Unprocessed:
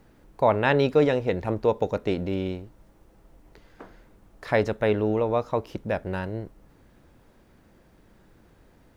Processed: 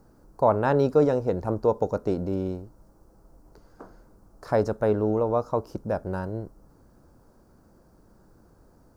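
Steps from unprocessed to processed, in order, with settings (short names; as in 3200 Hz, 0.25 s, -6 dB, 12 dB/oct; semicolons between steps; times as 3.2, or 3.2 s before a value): band shelf 2600 Hz -15.5 dB 1.3 oct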